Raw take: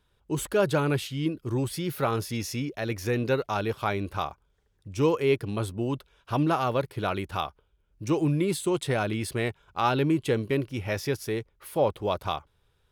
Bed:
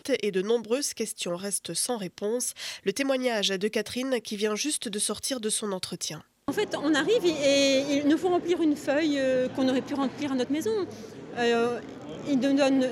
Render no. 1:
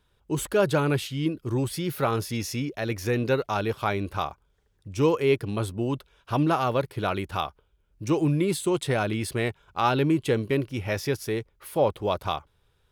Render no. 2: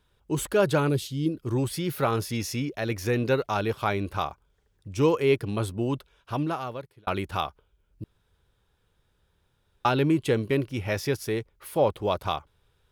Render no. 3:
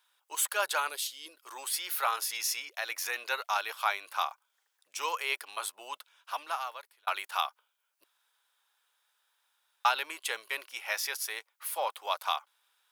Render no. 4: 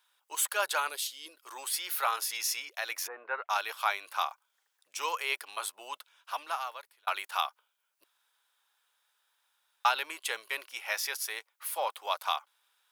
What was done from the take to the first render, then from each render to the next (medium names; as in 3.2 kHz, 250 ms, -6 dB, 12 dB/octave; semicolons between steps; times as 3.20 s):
trim +1.5 dB
0.89–1.34 s: high-order bell 1.4 kHz -11.5 dB 2.3 oct; 5.93–7.07 s: fade out; 8.04–9.85 s: room tone
high-pass 830 Hz 24 dB/octave; treble shelf 6.7 kHz +8 dB
3.06–3.49 s: low-pass 1.1 kHz -> 2.5 kHz 24 dB/octave